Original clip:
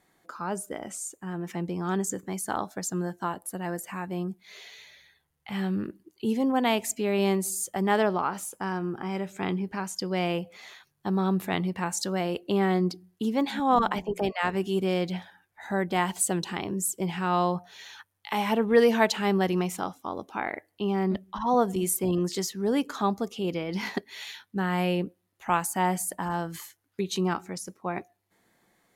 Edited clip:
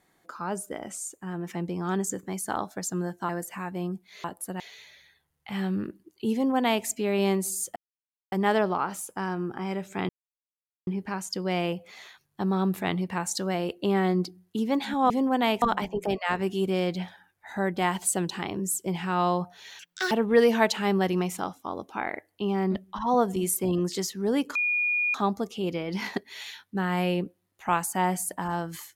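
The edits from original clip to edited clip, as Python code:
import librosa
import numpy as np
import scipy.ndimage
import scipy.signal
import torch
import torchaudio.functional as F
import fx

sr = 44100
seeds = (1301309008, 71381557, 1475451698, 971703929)

y = fx.edit(x, sr, fx.move(start_s=3.29, length_s=0.36, to_s=4.6),
    fx.duplicate(start_s=6.33, length_s=0.52, to_s=13.76),
    fx.insert_silence(at_s=7.76, length_s=0.56),
    fx.insert_silence(at_s=9.53, length_s=0.78),
    fx.speed_span(start_s=17.93, length_s=0.58, speed=1.8),
    fx.insert_tone(at_s=22.95, length_s=0.59, hz=2440.0, db=-22.5), tone=tone)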